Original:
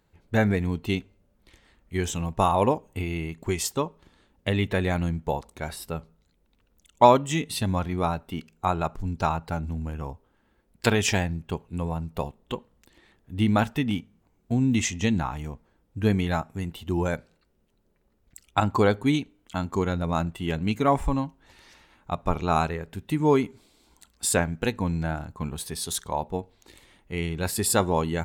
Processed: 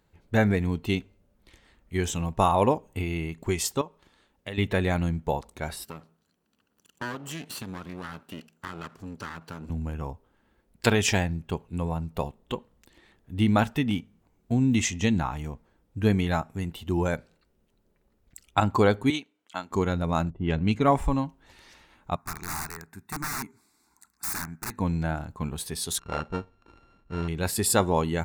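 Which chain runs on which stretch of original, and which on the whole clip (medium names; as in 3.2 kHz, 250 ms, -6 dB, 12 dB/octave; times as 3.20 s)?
3.81–4.58 s: bass shelf 370 Hz -8 dB + compression 1.5:1, threshold -44 dBFS
5.85–9.70 s: comb filter that takes the minimum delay 0.69 ms + high-pass 170 Hz + compression 3:1, threshold -35 dBFS
19.10–19.71 s: frequency weighting A + upward expansion, over -38 dBFS
20.30–20.91 s: level-controlled noise filter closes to 360 Hz, open at -19.5 dBFS + bass shelf 120 Hz +6 dB
22.16–24.78 s: high-pass 330 Hz 6 dB/octave + integer overflow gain 24 dB + static phaser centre 1.3 kHz, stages 4
25.99–27.28 s: sorted samples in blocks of 32 samples + tape spacing loss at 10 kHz 28 dB
whole clip: none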